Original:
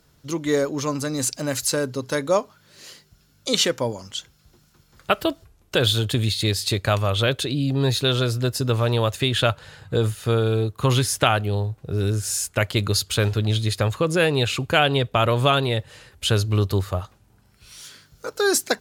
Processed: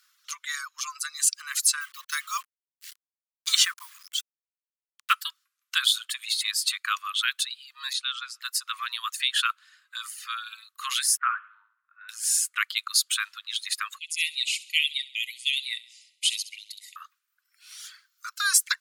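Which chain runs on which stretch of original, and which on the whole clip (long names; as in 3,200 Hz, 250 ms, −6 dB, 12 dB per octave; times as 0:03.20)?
0:01.81–0:05.13: comb filter 4.5 ms, depth 31% + bit-depth reduction 6 bits, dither none
0:07.93–0:08.41: downward expander −26 dBFS + downward compressor 2 to 1, threshold −24 dBFS + Bessel low-pass filter 7,500 Hz, order 4
0:11.17–0:12.09: low-pass filter 1,600 Hz 24 dB per octave + hum removal 58.11 Hz, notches 36 + flutter between parallel walls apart 11.8 metres, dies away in 0.5 s
0:13.98–0:16.96: linear-phase brick-wall band-pass 1,900–12,000 Hz + delay with a high-pass on its return 67 ms, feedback 54%, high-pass 2,700 Hz, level −6.5 dB
whole clip: reverb reduction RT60 1.4 s; Butterworth high-pass 1,100 Hz 96 dB per octave; dynamic equaliser 9,300 Hz, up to +5 dB, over −45 dBFS, Q 2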